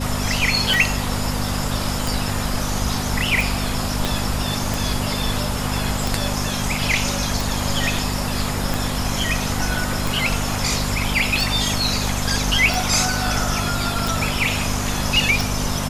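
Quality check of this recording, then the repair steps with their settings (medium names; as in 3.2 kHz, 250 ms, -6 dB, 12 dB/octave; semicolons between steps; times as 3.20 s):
hum 50 Hz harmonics 5 -26 dBFS
tick 45 rpm
4.05 s: pop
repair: de-click; de-hum 50 Hz, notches 5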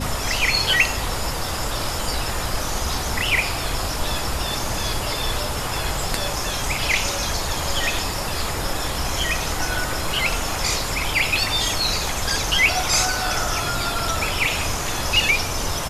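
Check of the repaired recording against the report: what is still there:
4.05 s: pop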